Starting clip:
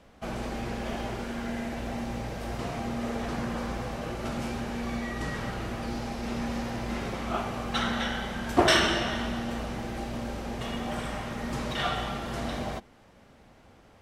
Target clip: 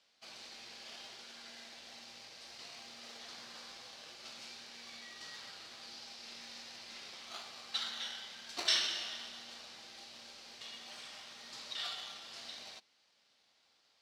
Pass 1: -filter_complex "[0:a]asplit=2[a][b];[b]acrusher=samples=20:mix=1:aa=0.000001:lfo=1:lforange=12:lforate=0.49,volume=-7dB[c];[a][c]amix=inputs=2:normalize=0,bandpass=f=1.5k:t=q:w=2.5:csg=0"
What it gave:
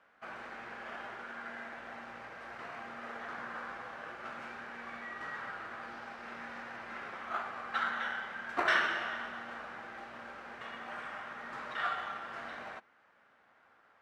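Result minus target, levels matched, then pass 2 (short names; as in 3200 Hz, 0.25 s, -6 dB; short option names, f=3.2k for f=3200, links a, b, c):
4000 Hz band -12.0 dB
-filter_complex "[0:a]asplit=2[a][b];[b]acrusher=samples=20:mix=1:aa=0.000001:lfo=1:lforange=12:lforate=0.49,volume=-7dB[c];[a][c]amix=inputs=2:normalize=0,bandpass=f=4.5k:t=q:w=2.5:csg=0"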